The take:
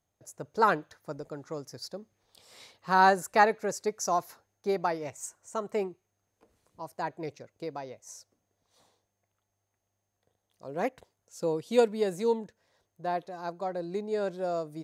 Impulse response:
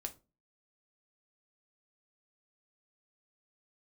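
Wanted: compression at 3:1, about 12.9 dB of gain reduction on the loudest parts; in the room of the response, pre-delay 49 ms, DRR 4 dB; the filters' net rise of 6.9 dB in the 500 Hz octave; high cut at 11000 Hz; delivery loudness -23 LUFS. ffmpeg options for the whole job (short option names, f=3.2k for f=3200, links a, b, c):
-filter_complex "[0:a]lowpass=11k,equalizer=f=500:t=o:g=8,acompressor=threshold=-27dB:ratio=3,asplit=2[a][b];[1:a]atrim=start_sample=2205,adelay=49[c];[b][c]afir=irnorm=-1:irlink=0,volume=-1.5dB[d];[a][d]amix=inputs=2:normalize=0,volume=8dB"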